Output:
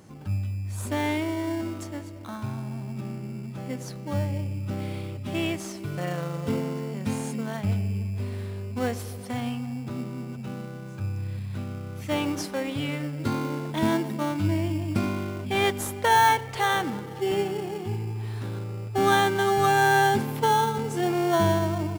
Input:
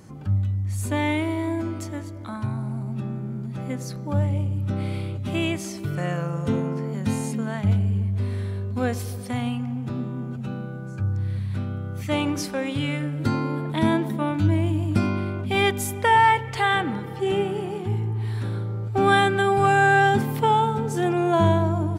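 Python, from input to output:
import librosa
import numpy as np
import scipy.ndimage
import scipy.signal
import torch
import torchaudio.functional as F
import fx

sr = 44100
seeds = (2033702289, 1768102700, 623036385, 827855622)

p1 = fx.sample_hold(x, sr, seeds[0], rate_hz=2500.0, jitter_pct=0)
p2 = x + (p1 * librosa.db_to_amplitude(-6.5))
p3 = fx.low_shelf(p2, sr, hz=240.0, db=-6.5)
y = p3 * librosa.db_to_amplitude(-3.5)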